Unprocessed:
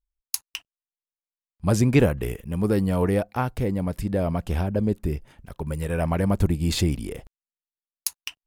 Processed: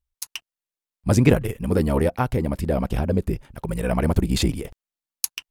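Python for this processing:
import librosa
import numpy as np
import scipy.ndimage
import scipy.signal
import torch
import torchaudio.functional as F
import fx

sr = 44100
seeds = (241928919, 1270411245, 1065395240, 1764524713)

y = fx.stretch_grains(x, sr, factor=0.65, grain_ms=29.0)
y = y * 10.0 ** (3.5 / 20.0)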